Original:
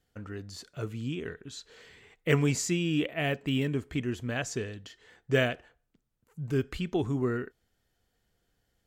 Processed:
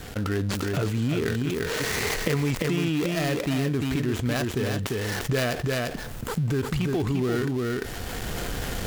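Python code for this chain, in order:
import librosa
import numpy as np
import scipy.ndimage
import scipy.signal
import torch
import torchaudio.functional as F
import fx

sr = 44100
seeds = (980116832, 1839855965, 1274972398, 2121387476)

y = fx.dead_time(x, sr, dead_ms=0.17)
y = fx.recorder_agc(y, sr, target_db=-20.0, rise_db_per_s=28.0, max_gain_db=30)
y = y + 10.0 ** (-6.5 / 20.0) * np.pad(y, (int(346 * sr / 1000.0), 0))[:len(y)]
y = fx.env_flatten(y, sr, amount_pct=70)
y = F.gain(torch.from_numpy(y), -2.0).numpy()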